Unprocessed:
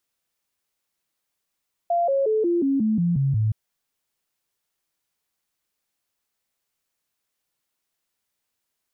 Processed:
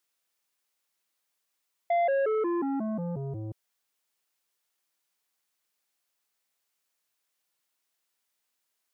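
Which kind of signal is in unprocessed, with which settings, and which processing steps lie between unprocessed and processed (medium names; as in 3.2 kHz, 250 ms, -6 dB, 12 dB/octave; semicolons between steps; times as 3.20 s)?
stepped sine 690 Hz down, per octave 3, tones 9, 0.18 s, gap 0.00 s -18 dBFS
high-pass 180 Hz 6 dB/octave; bass shelf 430 Hz -5.5 dB; transformer saturation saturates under 620 Hz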